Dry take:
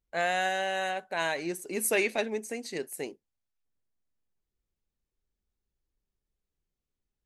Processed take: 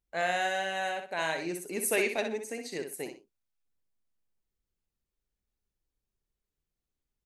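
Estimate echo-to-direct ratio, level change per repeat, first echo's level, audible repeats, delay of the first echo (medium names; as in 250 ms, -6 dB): -6.5 dB, -11.5 dB, -7.0 dB, 2, 62 ms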